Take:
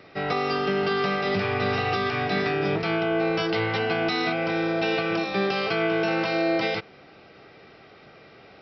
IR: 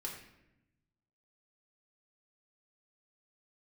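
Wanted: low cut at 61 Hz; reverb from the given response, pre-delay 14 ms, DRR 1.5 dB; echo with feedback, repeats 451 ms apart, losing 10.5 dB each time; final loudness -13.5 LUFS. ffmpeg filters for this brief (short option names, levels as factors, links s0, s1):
-filter_complex "[0:a]highpass=61,aecho=1:1:451|902|1353:0.299|0.0896|0.0269,asplit=2[s0][s1];[1:a]atrim=start_sample=2205,adelay=14[s2];[s1][s2]afir=irnorm=-1:irlink=0,volume=0.944[s3];[s0][s3]amix=inputs=2:normalize=0,volume=3.16"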